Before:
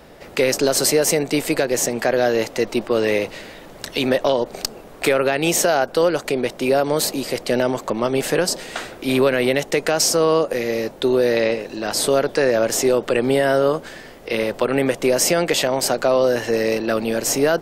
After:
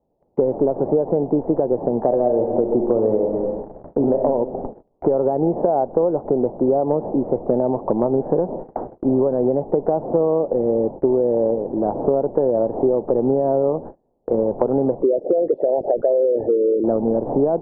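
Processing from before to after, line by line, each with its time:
2.06–4.24 reverb throw, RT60 1.3 s, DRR 4 dB
15.01–16.84 formant sharpening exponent 3
whole clip: elliptic low-pass 880 Hz, stop band 70 dB; gate -35 dBFS, range -32 dB; compressor, threshold -22 dBFS; gain +7.5 dB

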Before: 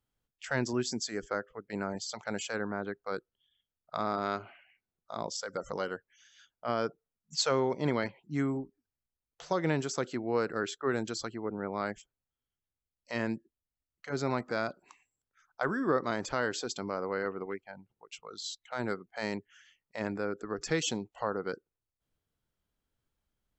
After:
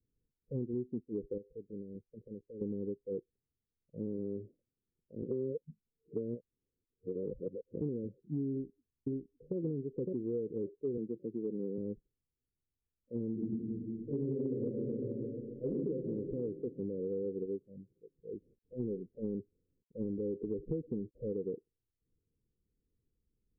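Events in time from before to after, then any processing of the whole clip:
1.37–2.61 compressor, threshold -41 dBFS
5.22–7.81 reverse
8.5–9.56 echo throw 0.56 s, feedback 15%, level -1 dB
10.97–11.78 HPF 140 Hz 24 dB/oct
13.31–15.71 reverb throw, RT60 2.4 s, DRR -8.5 dB
18.28–21.32 G.711 law mismatch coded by mu
whole clip: steep low-pass 500 Hz 96 dB/oct; compressor, threshold -36 dBFS; gain +3 dB

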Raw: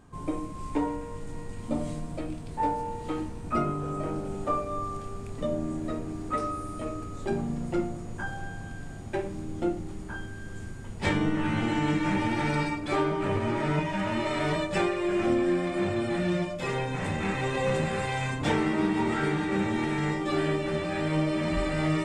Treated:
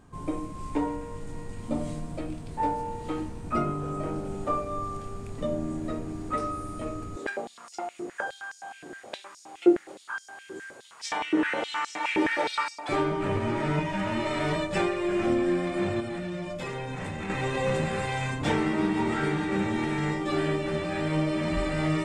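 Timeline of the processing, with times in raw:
7.16–12.89 stepped high-pass 9.6 Hz 360–5500 Hz
16–17.3 compressor, threshold -30 dBFS

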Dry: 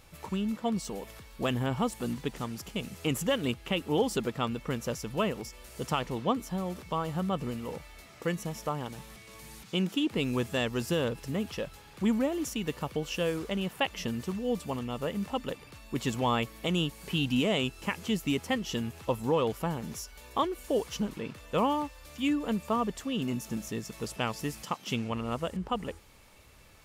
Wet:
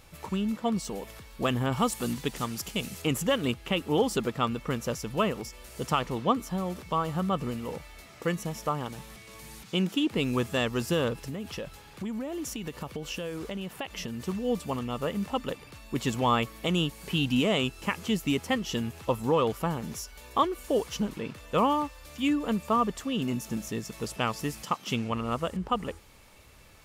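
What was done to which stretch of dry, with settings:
1.72–3.02 high shelf 2900 Hz +7.5 dB
11.23–14.26 compressor, threshold -33 dBFS
whole clip: dynamic EQ 1200 Hz, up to +5 dB, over -48 dBFS, Q 4.8; gain +2 dB

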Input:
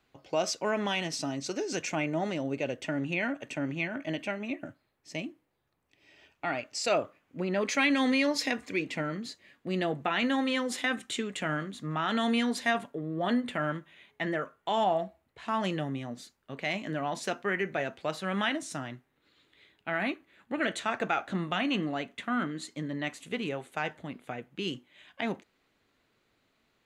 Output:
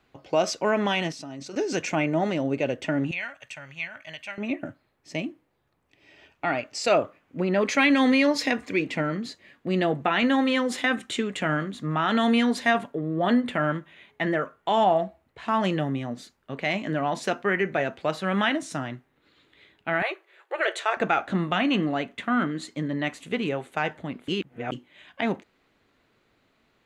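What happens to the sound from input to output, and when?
1.12–1.56 level quantiser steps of 22 dB
3.11–4.38 passive tone stack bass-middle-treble 10-0-10
20.02–20.97 brick-wall FIR high-pass 340 Hz
24.28–24.72 reverse
whole clip: high shelf 4000 Hz -7 dB; gain +6.5 dB

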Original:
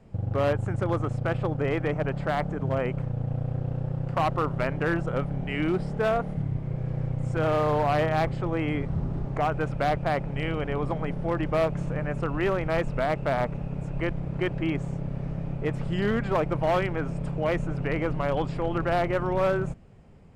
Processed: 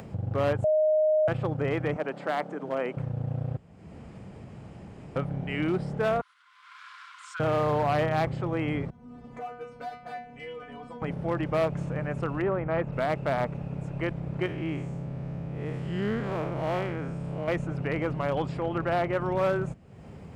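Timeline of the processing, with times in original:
0.64–1.28 bleep 619 Hz -18 dBFS
1.96–2.97 HPF 230 Hz 24 dB/oct
3.57–5.16 room tone
6.21–7.4 rippled Chebyshev high-pass 1000 Hz, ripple 9 dB
8.9–11.02 metallic resonator 240 Hz, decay 0.41 s, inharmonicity 0.002
12.41–12.91 LPF 1200 Hz -> 2400 Hz
14.46–17.48 time blur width 0.15 s
18.6–19.21 tone controls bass -1 dB, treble -4 dB
whole clip: HPF 70 Hz; upward compressor, threshold -31 dBFS; gain -1.5 dB

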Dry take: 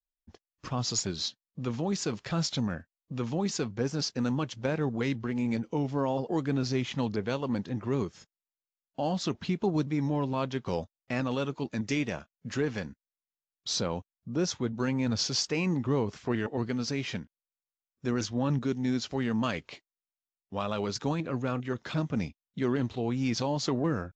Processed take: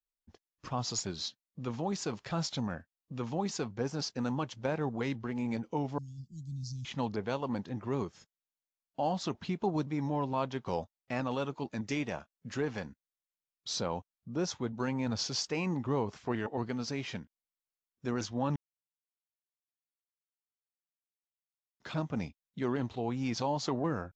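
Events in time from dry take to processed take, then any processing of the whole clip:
5.98–6.85 inverse Chebyshev band-stop 520–1700 Hz, stop band 70 dB
18.56–21.8 mute
whole clip: dynamic EQ 840 Hz, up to +7 dB, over -47 dBFS, Q 1.4; gain -5 dB

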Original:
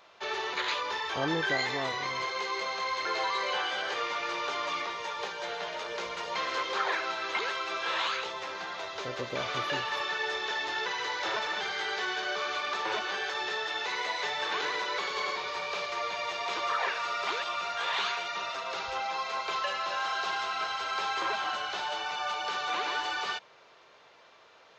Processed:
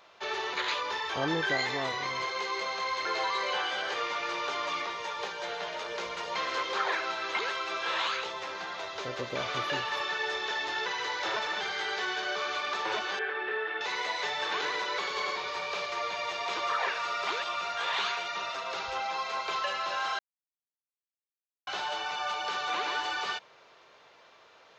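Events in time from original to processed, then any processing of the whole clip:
13.19–13.81 speaker cabinet 150–2600 Hz, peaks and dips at 180 Hz -7 dB, 420 Hz +7 dB, 610 Hz -7 dB, 960 Hz -5 dB, 1600 Hz +4 dB
20.19–21.67 mute

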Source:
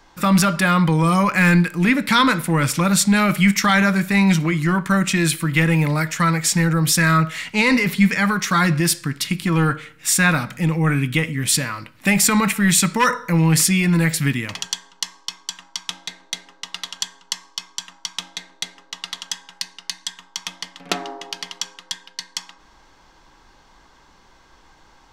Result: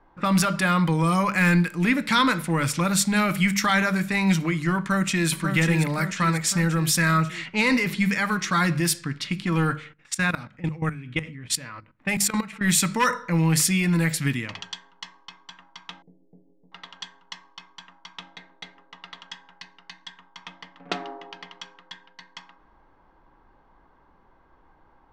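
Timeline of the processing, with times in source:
4.78–5.29 echo throw 0.54 s, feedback 60%, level -6 dB
9.93–12.64 level quantiser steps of 17 dB
16.02–16.72 inverse Chebyshev low-pass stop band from 1200 Hz, stop band 50 dB
whole clip: low-pass opened by the level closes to 1200 Hz, open at -15 dBFS; notches 50/100/150/200 Hz; gain -4.5 dB

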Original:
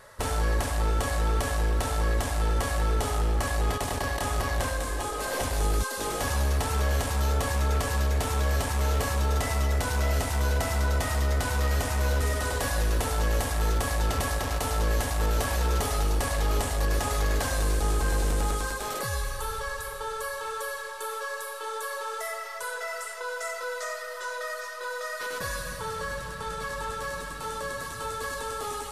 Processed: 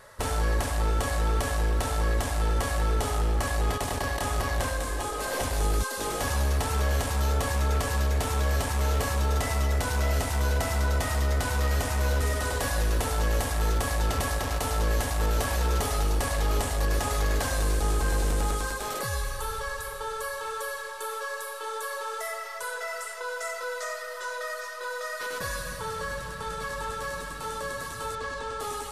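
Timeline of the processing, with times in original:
28.15–28.6 air absorption 88 m

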